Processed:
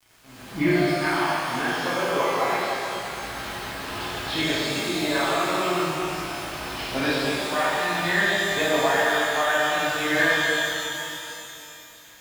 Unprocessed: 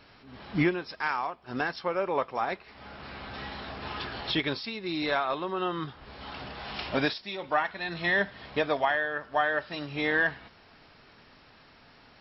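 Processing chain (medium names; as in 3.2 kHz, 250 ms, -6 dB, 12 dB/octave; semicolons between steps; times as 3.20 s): word length cut 8-bit, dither none; pitch-shifted reverb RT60 3 s, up +12 st, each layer -8 dB, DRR -9.5 dB; trim -4 dB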